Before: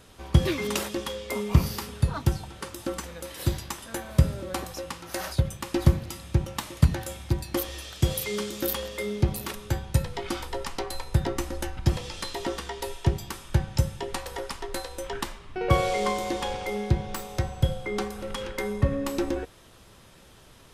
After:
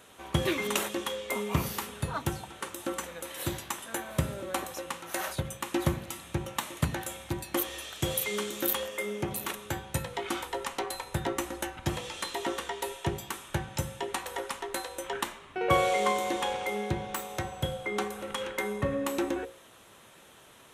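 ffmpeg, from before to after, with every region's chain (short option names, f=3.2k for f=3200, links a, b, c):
-filter_complex "[0:a]asettb=1/sr,asplit=3[a][b][c];[a]atrim=end=8.854[d];[b]atrim=start=8.85:end=9.31,asetpts=PTS-STARTPTS,afade=t=in:d=0.004:c=qsin,afade=t=out:st=0.456:d=0.004:c=qsin,highpass=f=150:p=1,equalizer=f=4k:w=4.4:g=-9[e];[c]atrim=start=9.306[f];[d][e]acrossfade=d=0.004:c1=hsin:c2=qsin[g];[g][f]acrossfade=d=0.004:c1=qsin:c2=hsin,highpass=f=360:p=1,equalizer=f=4.9k:w=3.7:g=-11,bandreject=f=60:t=h:w=6,bandreject=f=120:t=h:w=6,bandreject=f=180:t=h:w=6,bandreject=f=240:t=h:w=6,bandreject=f=300:t=h:w=6,bandreject=f=360:t=h:w=6,bandreject=f=420:t=h:w=6,bandreject=f=480:t=h:w=6,bandreject=f=540:t=h:w=6,volume=1.5dB"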